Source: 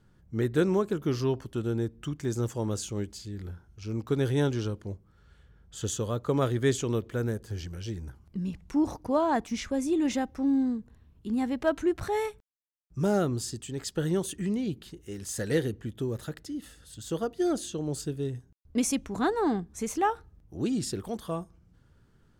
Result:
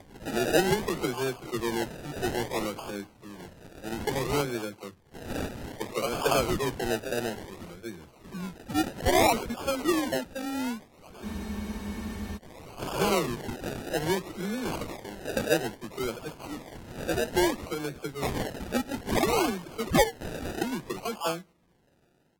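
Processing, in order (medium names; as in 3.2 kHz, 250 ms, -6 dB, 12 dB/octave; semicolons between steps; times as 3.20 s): delay that grows with frequency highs early, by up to 617 ms; frequency weighting A; decimation with a swept rate 32×, swing 60% 0.6 Hz; spectral freeze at 11.26 s, 1.10 s; trim +7.5 dB; AAC 64 kbps 44.1 kHz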